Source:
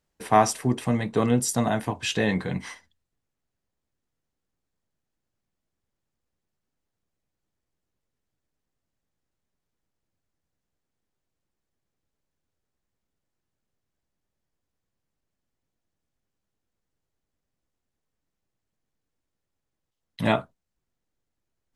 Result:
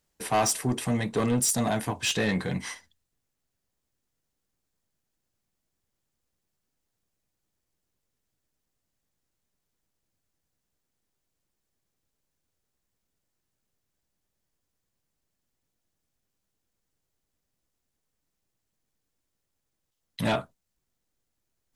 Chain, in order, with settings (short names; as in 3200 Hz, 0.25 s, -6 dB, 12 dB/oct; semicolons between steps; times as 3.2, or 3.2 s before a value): high shelf 4100 Hz +8 dB; soft clip -19 dBFS, distortion -9 dB